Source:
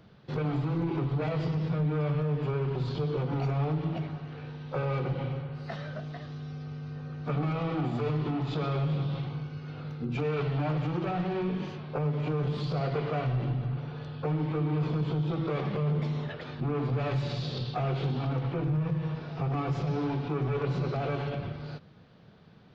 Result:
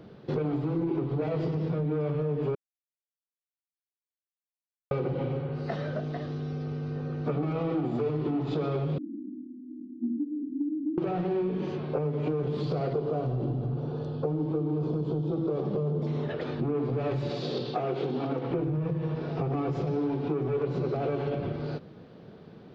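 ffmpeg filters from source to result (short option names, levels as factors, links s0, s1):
-filter_complex "[0:a]asettb=1/sr,asplit=3[s0][s1][s2];[s0]atrim=end=8.984[s3];[s1]atrim=start=8.98:end=10.98,asetpts=PTS-STARTPTS,afade=t=in:d=0.004:c=qsin,afade=t=out:st=1.996:d=0.004:c=qsin,asuperpass=centerf=260:order=12:qfactor=2.1[s4];[s2]atrim=start=10.976[s5];[s3][s4]acrossfade=d=0.004:c1=hsin:c2=qsin[s6];[s6][s5]acrossfade=d=0.004:c1=qsin:c2=hsin,asettb=1/sr,asplit=3[s7][s8][s9];[s7]atrim=end=12.934[s10];[s8]atrim=start=12.93:end=16.07,asetpts=PTS-STARTPTS,afade=t=in:d=0.004:c=qsin,afade=t=out:st=3.136:d=0.004:c=qsin,equalizer=f=2100:w=1.4:g=-14.5[s11];[s9]atrim=start=16.066[s12];[s10][s11]acrossfade=d=0.004:c1=hsin:c2=qsin[s13];[s13][s12]acrossfade=d=0.004:c1=qsin:c2=hsin,asettb=1/sr,asplit=3[s14][s15][s16];[s14]atrim=end=17.304[s17];[s15]atrim=start=17.3:end=18.51,asetpts=PTS-STARTPTS,afade=t=in:d=0.004:c=qsin,afade=t=out:st=1.206:d=0.004:c=qsin,highpass=210[s18];[s16]atrim=start=18.506[s19];[s17][s18]acrossfade=d=0.004:c1=hsin:c2=qsin[s20];[s20][s19]acrossfade=d=0.004:c1=qsin:c2=hsin,asplit=3[s21][s22][s23];[s21]atrim=end=2.55,asetpts=PTS-STARTPTS,afade=t=out:st=2.546:d=0.004:c=hsin[s24];[s22]atrim=start=2.55:end=4.91,asetpts=PTS-STARTPTS,volume=0[s25];[s23]atrim=start=4.91,asetpts=PTS-STARTPTS,afade=t=in:d=0.004:c=hsin[s26];[s24][s25][s26]concat=n=3:v=0:a=1,equalizer=f=370:t=o:w=1.8:g=12,acompressor=threshold=0.0398:ratio=4,volume=1.12"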